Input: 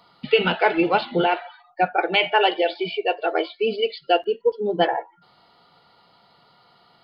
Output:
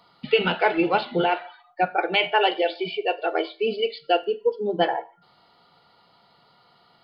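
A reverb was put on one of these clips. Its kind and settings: Schroeder reverb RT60 0.35 s, combs from 27 ms, DRR 17 dB; gain -2 dB

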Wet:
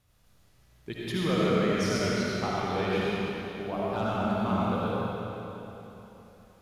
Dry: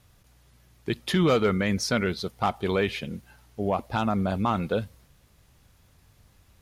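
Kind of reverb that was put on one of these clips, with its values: digital reverb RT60 3.5 s, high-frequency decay 0.85×, pre-delay 35 ms, DRR -7.5 dB; gain -10 dB

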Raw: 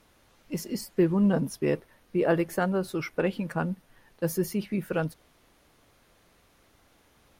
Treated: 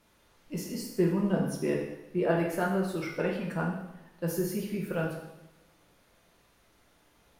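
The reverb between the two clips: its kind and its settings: two-slope reverb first 0.86 s, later 2.2 s, from -23 dB, DRR -2 dB; gain -6 dB

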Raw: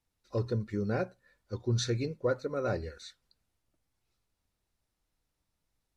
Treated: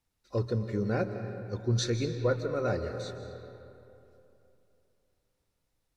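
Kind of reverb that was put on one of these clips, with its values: digital reverb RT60 3 s, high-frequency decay 0.55×, pre-delay 0.11 s, DRR 8 dB; gain +1.5 dB

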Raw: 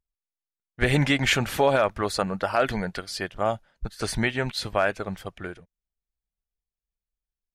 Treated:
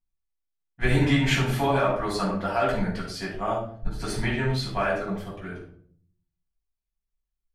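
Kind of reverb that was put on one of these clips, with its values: shoebox room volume 650 m³, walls furnished, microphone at 8.5 m; gain -12.5 dB

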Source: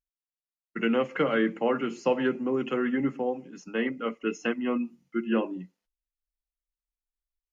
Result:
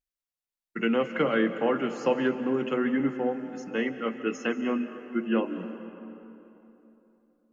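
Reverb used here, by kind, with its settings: digital reverb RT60 3.3 s, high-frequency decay 0.55×, pre-delay 0.12 s, DRR 10 dB

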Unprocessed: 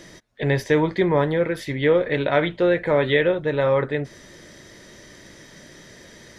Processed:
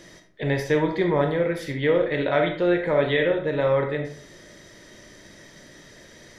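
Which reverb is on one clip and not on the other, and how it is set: digital reverb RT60 0.54 s, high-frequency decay 0.6×, pre-delay 0 ms, DRR 4 dB; gain -3.5 dB

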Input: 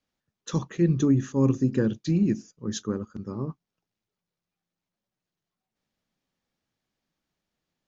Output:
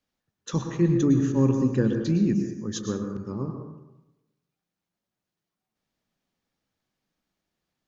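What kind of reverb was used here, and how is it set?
plate-style reverb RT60 0.98 s, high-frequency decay 0.45×, pre-delay 95 ms, DRR 5 dB

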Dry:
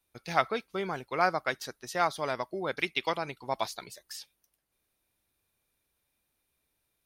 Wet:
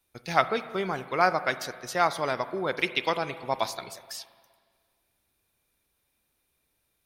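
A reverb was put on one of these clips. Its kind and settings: spring tank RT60 1.8 s, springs 38/42/52 ms, chirp 55 ms, DRR 12.5 dB; gain +3.5 dB

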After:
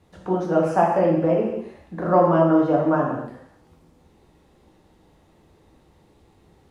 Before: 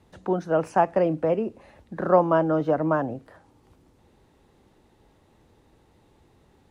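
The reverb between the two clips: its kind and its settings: non-linear reverb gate 0.32 s falling, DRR -2 dB; gain -1.5 dB

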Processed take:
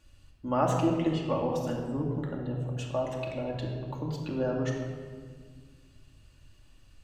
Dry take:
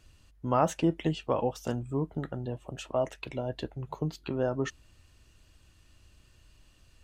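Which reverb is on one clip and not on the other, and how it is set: shoebox room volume 2500 m³, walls mixed, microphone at 2.4 m; gain -4 dB

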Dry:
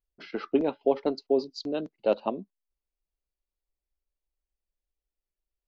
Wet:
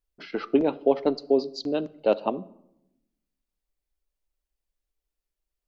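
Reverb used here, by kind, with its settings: shoebox room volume 2500 m³, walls furnished, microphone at 0.44 m; gain +3 dB

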